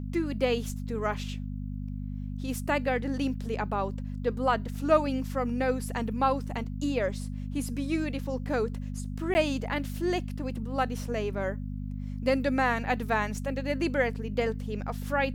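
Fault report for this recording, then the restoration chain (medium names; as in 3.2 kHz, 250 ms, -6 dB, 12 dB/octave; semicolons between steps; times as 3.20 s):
hum 50 Hz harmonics 5 -35 dBFS
9.34–9.35 s: dropout 10 ms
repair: de-hum 50 Hz, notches 5; interpolate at 9.34 s, 10 ms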